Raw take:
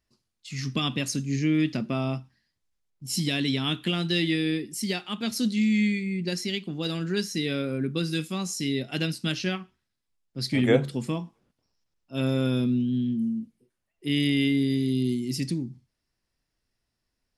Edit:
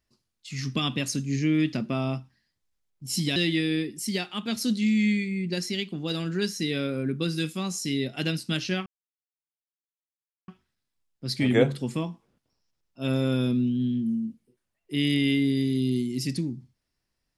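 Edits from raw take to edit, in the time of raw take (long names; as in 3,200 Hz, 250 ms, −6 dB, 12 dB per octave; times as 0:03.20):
0:03.36–0:04.11: remove
0:09.61: splice in silence 1.62 s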